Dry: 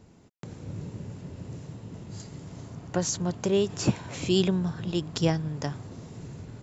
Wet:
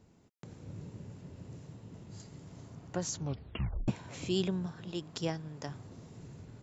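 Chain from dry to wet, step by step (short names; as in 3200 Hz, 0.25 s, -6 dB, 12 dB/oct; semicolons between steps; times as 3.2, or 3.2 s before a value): 3.14 tape stop 0.74 s; 4.66–5.69 low shelf 140 Hz -9.5 dB; gain -8 dB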